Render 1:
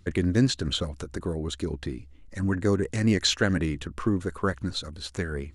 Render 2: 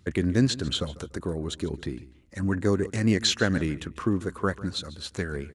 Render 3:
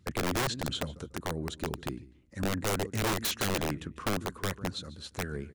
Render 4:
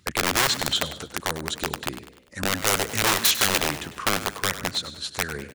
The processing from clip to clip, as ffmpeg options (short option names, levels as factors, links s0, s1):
-af "highpass=73,aecho=1:1:146|292:0.119|0.0309"
-af "equalizer=f=170:t=o:w=2.4:g=4.5,aeval=exprs='(mod(6.68*val(0)+1,2)-1)/6.68':c=same,volume=0.447"
-filter_complex "[0:a]tiltshelf=f=660:g=-6.5,asplit=2[s0][s1];[s1]asplit=5[s2][s3][s4][s5][s6];[s2]adelay=99,afreqshift=61,volume=0.224[s7];[s3]adelay=198,afreqshift=122,volume=0.104[s8];[s4]adelay=297,afreqshift=183,volume=0.0473[s9];[s5]adelay=396,afreqshift=244,volume=0.0219[s10];[s6]adelay=495,afreqshift=305,volume=0.01[s11];[s7][s8][s9][s10][s11]amix=inputs=5:normalize=0[s12];[s0][s12]amix=inputs=2:normalize=0,volume=2"